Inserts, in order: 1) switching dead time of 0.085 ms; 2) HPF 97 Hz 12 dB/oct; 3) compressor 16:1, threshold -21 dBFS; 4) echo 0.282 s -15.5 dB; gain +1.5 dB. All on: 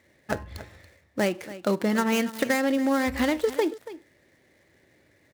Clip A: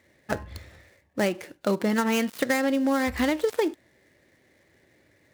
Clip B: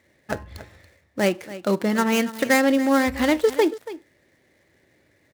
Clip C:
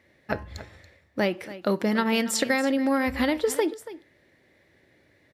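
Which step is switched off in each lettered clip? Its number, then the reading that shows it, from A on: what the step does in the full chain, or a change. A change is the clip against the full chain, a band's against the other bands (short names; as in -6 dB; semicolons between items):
4, momentary loudness spread change -6 LU; 3, mean gain reduction 2.5 dB; 1, distortion -14 dB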